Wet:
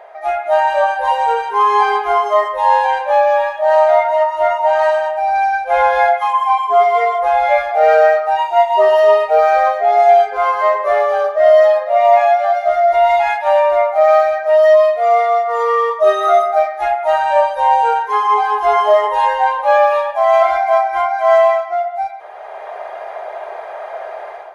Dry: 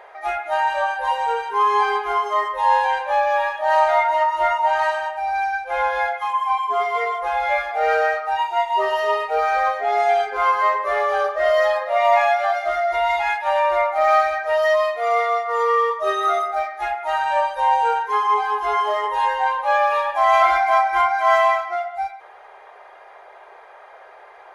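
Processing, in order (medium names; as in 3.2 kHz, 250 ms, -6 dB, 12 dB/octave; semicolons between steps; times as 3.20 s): peaking EQ 650 Hz +12 dB 0.43 oct; level rider; trim -1 dB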